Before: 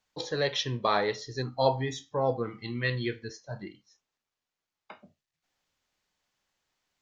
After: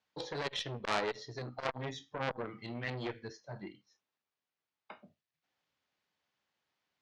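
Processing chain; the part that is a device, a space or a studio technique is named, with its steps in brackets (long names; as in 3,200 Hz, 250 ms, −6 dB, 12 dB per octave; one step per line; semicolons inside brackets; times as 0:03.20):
valve radio (band-pass filter 100–4,400 Hz; tube saturation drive 15 dB, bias 0.6; saturating transformer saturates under 2,900 Hz)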